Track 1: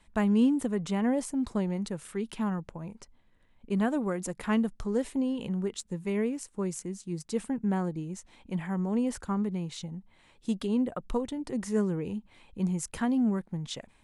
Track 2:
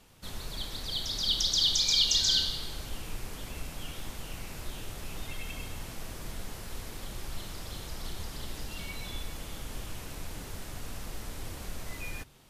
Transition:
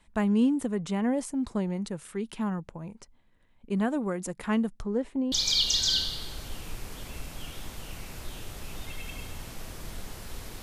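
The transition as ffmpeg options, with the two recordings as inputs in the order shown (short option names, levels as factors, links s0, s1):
-filter_complex "[0:a]asettb=1/sr,asplit=3[s0][s1][s2];[s0]atrim=end=4.824[s3];[s1]atrim=start=4.82:end=5.32,asetpts=PTS-STARTPTS,afade=t=in:d=0.004:c=qsin,afade=t=out:st=0.496:d=0.004:c=qsin,lowpass=f=1600:p=1[s4];[s2]atrim=start=5.316[s5];[s3][s4]acrossfade=d=0.004:c1=hsin:c2=qsin[s6];[s6][s5]acrossfade=d=0.004:c1=qsin:c2=hsin,apad=whole_dur=10.62,atrim=end=10.62,atrim=end=5.322[s7];[1:a]atrim=start=1.728:end=7.03[s8];[s7][s8]acrossfade=d=0.004:c1=hsin:c2=hsin"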